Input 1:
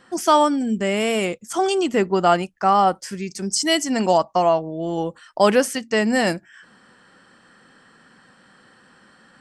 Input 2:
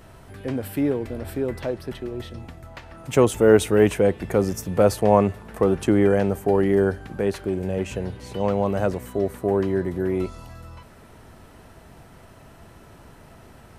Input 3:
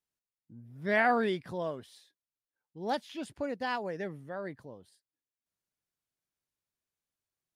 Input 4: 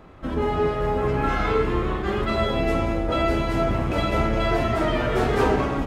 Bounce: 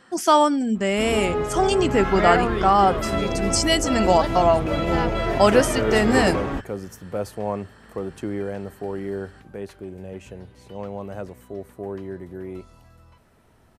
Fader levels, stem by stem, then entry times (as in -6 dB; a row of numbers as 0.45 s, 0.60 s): -0.5 dB, -10.5 dB, +3.0 dB, -2.5 dB; 0.00 s, 2.35 s, 1.30 s, 0.75 s